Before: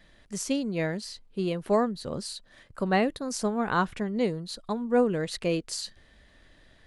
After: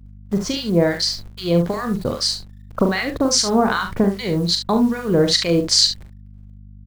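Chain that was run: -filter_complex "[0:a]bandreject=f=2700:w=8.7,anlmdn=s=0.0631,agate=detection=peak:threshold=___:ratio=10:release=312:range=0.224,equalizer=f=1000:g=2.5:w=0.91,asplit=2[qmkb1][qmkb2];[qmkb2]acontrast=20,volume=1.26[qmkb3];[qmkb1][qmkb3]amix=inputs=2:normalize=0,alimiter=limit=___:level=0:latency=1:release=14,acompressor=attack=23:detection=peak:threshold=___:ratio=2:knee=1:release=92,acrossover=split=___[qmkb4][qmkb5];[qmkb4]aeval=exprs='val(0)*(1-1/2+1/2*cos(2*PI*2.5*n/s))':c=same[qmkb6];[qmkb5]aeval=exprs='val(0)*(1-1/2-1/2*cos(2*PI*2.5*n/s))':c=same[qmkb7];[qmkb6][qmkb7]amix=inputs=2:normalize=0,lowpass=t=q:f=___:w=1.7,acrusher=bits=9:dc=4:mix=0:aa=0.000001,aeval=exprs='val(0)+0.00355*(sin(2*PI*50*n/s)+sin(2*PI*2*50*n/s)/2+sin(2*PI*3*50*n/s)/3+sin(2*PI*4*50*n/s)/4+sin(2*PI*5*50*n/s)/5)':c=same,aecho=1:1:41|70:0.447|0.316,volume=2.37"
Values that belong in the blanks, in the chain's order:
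0.00282, 0.316, 0.0631, 1300, 5400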